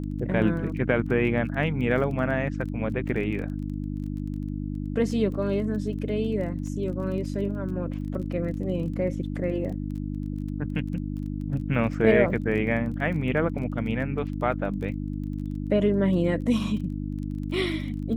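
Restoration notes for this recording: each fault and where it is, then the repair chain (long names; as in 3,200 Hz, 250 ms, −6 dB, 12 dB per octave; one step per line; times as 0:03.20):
surface crackle 21 per second −36 dBFS
mains hum 50 Hz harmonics 6 −31 dBFS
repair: click removal
hum removal 50 Hz, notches 6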